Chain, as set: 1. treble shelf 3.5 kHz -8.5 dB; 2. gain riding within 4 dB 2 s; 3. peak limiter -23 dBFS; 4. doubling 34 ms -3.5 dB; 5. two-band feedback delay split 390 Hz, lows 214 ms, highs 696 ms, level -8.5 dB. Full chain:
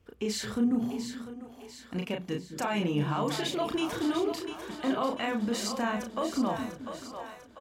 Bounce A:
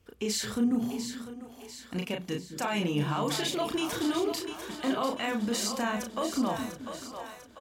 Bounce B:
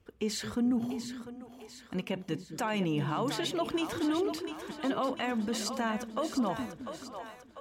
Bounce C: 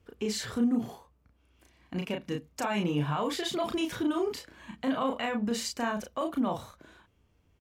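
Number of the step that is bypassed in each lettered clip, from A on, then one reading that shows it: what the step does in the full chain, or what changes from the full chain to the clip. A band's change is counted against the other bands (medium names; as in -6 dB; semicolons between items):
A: 1, 8 kHz band +5.0 dB; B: 4, loudness change -1.5 LU; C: 5, echo-to-direct -7.0 dB to none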